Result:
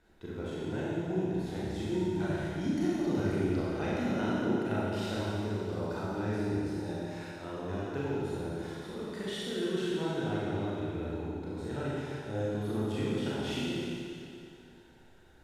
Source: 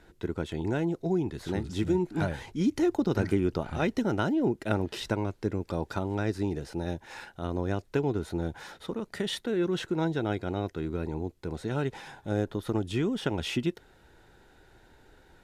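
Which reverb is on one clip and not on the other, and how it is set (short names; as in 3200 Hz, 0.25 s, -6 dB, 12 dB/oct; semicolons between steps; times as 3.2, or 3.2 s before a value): Schroeder reverb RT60 2.5 s, combs from 29 ms, DRR -8 dB; gain -11.5 dB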